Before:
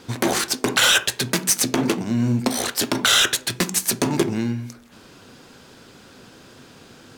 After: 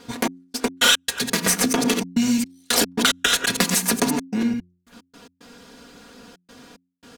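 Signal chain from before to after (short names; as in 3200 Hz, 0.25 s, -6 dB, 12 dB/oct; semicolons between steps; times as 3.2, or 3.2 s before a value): reverse delay 0.108 s, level -6.5 dB; step gate "xx..x.x.xxxxxxx." 111 bpm -60 dB; comb 4.2 ms, depth 77%; de-hum 89.13 Hz, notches 4; 1.46–4.09 three-band squash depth 100%; gain -2.5 dB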